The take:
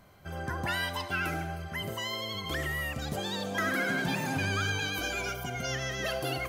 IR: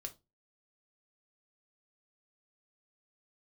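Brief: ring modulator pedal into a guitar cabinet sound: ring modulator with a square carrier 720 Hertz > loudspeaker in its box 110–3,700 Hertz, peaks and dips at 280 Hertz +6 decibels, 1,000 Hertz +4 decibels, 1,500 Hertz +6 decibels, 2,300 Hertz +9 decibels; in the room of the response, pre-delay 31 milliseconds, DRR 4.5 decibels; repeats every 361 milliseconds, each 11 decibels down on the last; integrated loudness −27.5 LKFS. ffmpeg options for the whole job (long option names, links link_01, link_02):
-filter_complex "[0:a]aecho=1:1:361|722|1083:0.282|0.0789|0.0221,asplit=2[link_01][link_02];[1:a]atrim=start_sample=2205,adelay=31[link_03];[link_02][link_03]afir=irnorm=-1:irlink=0,volume=-1dB[link_04];[link_01][link_04]amix=inputs=2:normalize=0,aeval=exprs='val(0)*sgn(sin(2*PI*720*n/s))':channel_layout=same,highpass=110,equalizer=frequency=280:width_type=q:width=4:gain=6,equalizer=frequency=1000:width_type=q:width=4:gain=4,equalizer=frequency=1500:width_type=q:width=4:gain=6,equalizer=frequency=2300:width_type=q:width=4:gain=9,lowpass=frequency=3700:width=0.5412,lowpass=frequency=3700:width=1.3066,volume=-1.5dB"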